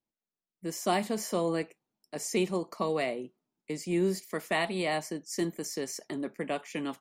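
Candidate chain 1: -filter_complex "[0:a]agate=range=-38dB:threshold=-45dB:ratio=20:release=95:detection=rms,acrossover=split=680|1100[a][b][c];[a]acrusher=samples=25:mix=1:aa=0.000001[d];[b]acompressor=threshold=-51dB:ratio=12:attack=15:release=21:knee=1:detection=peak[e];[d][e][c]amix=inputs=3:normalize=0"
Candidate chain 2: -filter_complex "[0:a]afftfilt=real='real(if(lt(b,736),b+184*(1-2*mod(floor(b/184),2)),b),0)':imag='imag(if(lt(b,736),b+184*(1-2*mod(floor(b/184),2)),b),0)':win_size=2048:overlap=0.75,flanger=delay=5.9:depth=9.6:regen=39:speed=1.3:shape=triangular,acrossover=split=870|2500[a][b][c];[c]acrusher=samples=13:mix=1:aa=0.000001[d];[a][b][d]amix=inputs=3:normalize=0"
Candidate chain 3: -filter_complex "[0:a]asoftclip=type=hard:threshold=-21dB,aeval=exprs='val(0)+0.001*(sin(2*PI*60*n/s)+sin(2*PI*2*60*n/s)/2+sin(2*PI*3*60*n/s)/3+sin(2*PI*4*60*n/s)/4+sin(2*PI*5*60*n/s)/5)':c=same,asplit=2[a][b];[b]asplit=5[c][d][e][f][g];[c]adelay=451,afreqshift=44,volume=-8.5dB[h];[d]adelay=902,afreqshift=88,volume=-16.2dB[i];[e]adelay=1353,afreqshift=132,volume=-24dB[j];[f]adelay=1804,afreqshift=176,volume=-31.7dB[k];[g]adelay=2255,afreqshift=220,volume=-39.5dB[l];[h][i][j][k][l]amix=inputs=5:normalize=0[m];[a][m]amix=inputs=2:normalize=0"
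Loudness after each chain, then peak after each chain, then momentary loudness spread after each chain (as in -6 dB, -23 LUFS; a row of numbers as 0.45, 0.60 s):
-33.0, -36.0, -32.5 LUFS; -18.0, -20.0, -18.0 dBFS; 9, 11, 8 LU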